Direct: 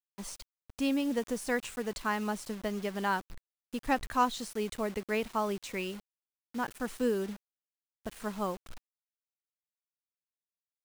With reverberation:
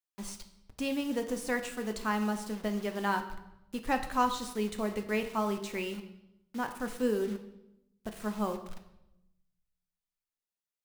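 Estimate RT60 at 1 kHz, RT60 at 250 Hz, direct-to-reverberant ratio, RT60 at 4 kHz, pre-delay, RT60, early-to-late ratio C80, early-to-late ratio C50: 0.80 s, 1.2 s, 6.0 dB, 0.75 s, 4 ms, 0.90 s, 13.0 dB, 10.5 dB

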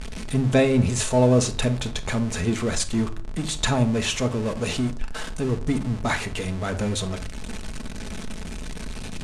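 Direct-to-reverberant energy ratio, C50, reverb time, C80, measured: 6.0 dB, 15.0 dB, 0.45 s, 20.5 dB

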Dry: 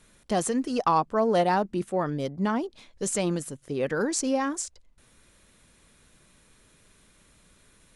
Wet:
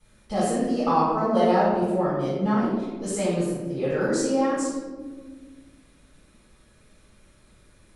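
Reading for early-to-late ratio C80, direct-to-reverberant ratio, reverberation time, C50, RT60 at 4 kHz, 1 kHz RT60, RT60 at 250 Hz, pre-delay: 1.5 dB, -15.0 dB, 1.5 s, -1.5 dB, 0.70 s, 1.2 s, 2.3 s, 3 ms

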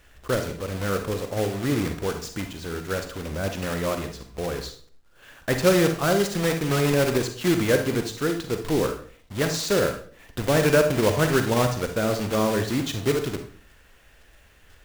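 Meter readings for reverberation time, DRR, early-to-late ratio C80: 0.45 s, 5.5 dB, 12.5 dB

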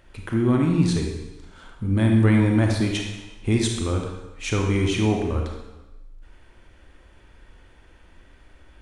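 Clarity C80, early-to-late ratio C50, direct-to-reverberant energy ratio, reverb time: 4.5 dB, 3.0 dB, 1.0 dB, 1.1 s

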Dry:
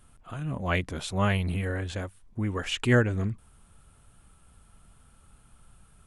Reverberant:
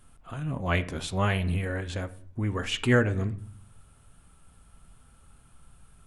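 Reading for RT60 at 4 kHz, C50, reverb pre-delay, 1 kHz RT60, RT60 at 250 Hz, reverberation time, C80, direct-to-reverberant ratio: 0.35 s, 16.5 dB, 7 ms, 0.50 s, 0.80 s, 0.50 s, 20.5 dB, 11.0 dB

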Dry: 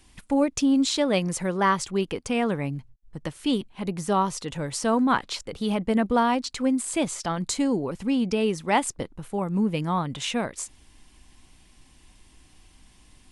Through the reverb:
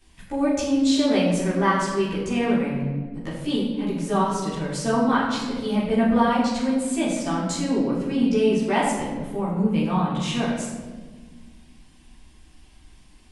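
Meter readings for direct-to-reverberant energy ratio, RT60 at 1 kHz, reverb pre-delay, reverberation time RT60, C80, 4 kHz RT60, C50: -10.0 dB, 1.2 s, 13 ms, 1.5 s, 4.0 dB, 0.90 s, 2.0 dB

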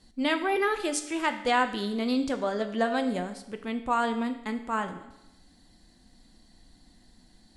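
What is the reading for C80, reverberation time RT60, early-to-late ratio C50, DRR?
13.0 dB, 0.90 s, 11.0 dB, 7.5 dB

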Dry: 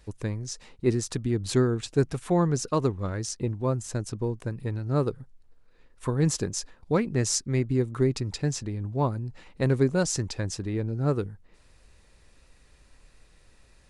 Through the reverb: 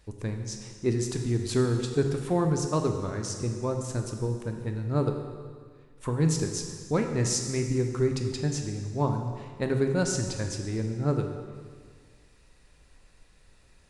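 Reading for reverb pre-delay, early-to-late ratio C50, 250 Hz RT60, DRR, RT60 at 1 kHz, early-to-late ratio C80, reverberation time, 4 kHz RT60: 7 ms, 5.5 dB, 1.8 s, 4.0 dB, 1.8 s, 7.0 dB, 1.8 s, 1.7 s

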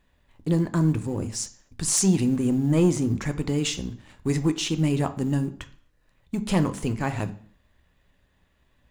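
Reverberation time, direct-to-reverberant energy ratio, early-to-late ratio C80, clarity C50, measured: 0.55 s, 9.5 dB, 19.5 dB, 15.0 dB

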